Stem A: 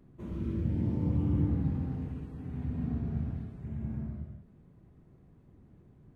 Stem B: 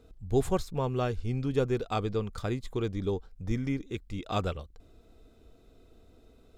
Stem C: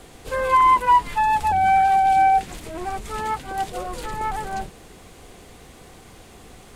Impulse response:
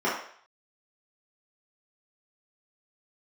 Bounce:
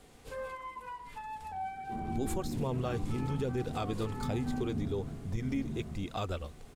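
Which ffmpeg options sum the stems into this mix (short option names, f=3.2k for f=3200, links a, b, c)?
-filter_complex "[0:a]alimiter=level_in=3.5dB:limit=-24dB:level=0:latency=1,volume=-3.5dB,adelay=1700,volume=-7.5dB,asplit=2[a][b];[b]volume=-6.5dB[c];[1:a]highshelf=f=9k:g=8,flanger=delay=0.3:depth=3.4:regen=-38:speed=1.2:shape=sinusoidal,adelay=1850,volume=2.5dB[d];[2:a]acompressor=threshold=-27dB:ratio=5,volume=-12.5dB,asplit=2[e][f];[f]volume=-19.5dB[g];[3:a]atrim=start_sample=2205[h];[c][g]amix=inputs=2:normalize=0[i];[i][h]afir=irnorm=-1:irlink=0[j];[a][d][e][j]amix=inputs=4:normalize=0,alimiter=level_in=0.5dB:limit=-24dB:level=0:latency=1:release=102,volume=-0.5dB"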